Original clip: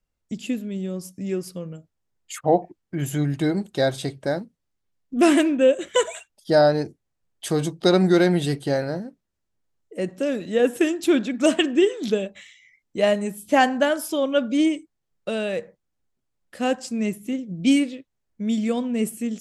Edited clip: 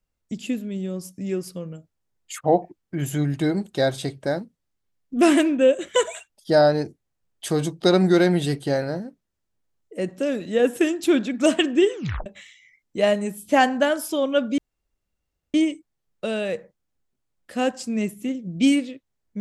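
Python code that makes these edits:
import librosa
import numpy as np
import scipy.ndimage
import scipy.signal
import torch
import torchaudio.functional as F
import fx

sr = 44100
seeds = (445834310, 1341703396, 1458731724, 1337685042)

y = fx.edit(x, sr, fx.tape_stop(start_s=11.94, length_s=0.32),
    fx.insert_room_tone(at_s=14.58, length_s=0.96), tone=tone)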